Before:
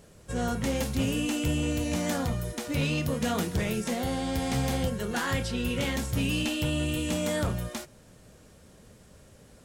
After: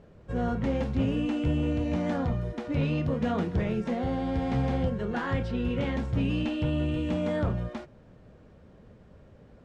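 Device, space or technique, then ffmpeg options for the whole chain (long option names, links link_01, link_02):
phone in a pocket: -af "lowpass=3700,highshelf=frequency=2000:gain=-12,volume=1.5dB"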